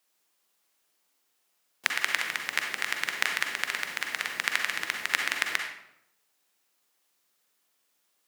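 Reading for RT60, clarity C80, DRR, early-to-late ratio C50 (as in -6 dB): 0.80 s, 7.0 dB, 2.5 dB, 3.5 dB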